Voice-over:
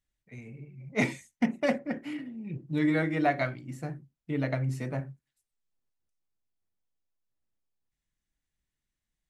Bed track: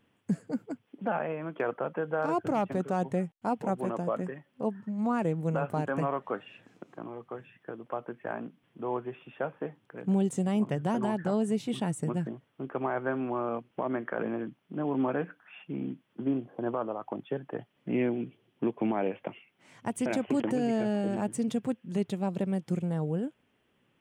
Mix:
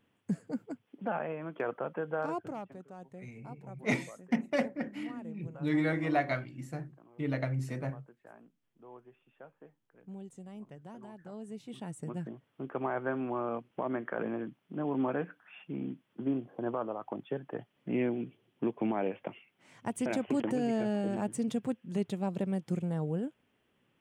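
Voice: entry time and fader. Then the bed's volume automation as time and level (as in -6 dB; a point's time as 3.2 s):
2.90 s, -3.0 dB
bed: 2.21 s -3.5 dB
2.83 s -19 dB
11.16 s -19 dB
12.55 s -2.5 dB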